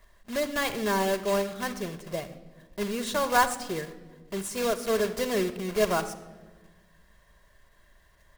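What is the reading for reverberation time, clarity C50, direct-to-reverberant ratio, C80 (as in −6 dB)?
non-exponential decay, 13.0 dB, 8.0 dB, 15.0 dB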